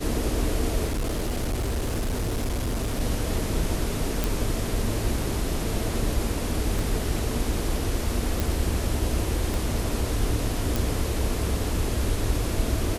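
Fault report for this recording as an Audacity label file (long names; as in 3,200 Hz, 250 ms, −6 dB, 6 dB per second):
0.860000	3.010000	clipping −23 dBFS
4.240000	4.240000	click
6.790000	6.790000	click
8.400000	8.400000	click
9.540000	9.540000	click
10.760000	10.760000	click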